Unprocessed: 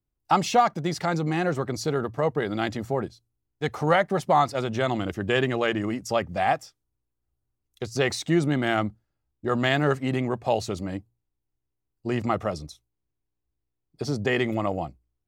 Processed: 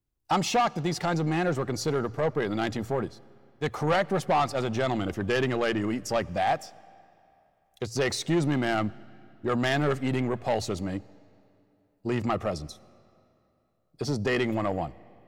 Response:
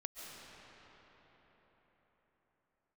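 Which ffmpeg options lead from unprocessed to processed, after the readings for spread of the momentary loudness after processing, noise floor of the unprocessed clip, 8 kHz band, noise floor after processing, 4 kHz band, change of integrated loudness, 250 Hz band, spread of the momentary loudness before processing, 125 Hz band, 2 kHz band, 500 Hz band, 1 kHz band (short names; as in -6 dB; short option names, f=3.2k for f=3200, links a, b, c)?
9 LU, -81 dBFS, 0.0 dB, -70 dBFS, -1.5 dB, -2.5 dB, -1.5 dB, 11 LU, -1.5 dB, -3.0 dB, -2.0 dB, -3.5 dB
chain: -filter_complex "[0:a]asoftclip=type=tanh:threshold=-19dB,asplit=2[a][b];[1:a]atrim=start_sample=2205,asetrate=79380,aresample=44100[c];[b][c]afir=irnorm=-1:irlink=0,volume=-13.5dB[d];[a][d]amix=inputs=2:normalize=0"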